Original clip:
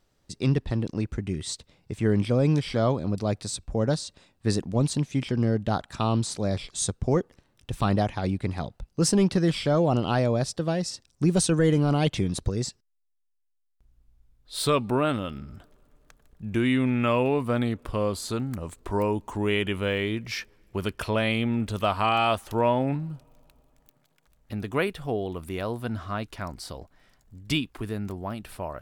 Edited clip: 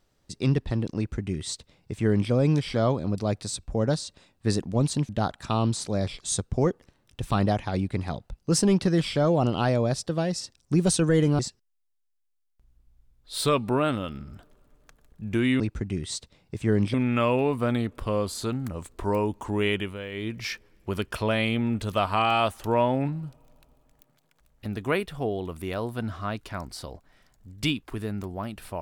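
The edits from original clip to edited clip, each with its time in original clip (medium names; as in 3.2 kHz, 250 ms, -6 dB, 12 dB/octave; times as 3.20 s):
0.97–2.31 s: copy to 16.81 s
5.09–5.59 s: delete
11.89–12.60 s: delete
19.61–20.22 s: dip -10 dB, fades 0.24 s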